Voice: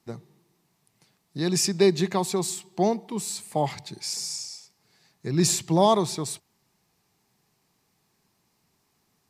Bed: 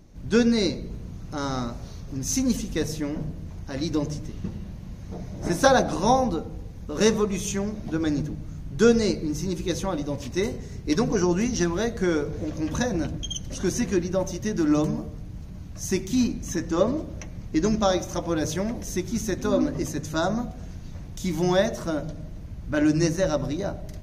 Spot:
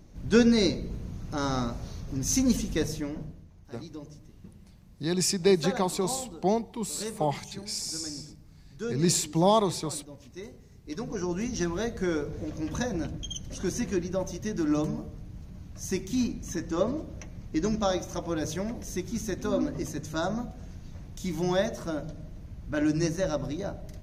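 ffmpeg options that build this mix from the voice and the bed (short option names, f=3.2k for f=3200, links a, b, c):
-filter_complex "[0:a]adelay=3650,volume=-2.5dB[a];[1:a]volume=11dB,afade=t=out:st=2.69:d=0.8:silence=0.158489,afade=t=in:st=10.81:d=0.88:silence=0.266073[b];[a][b]amix=inputs=2:normalize=0"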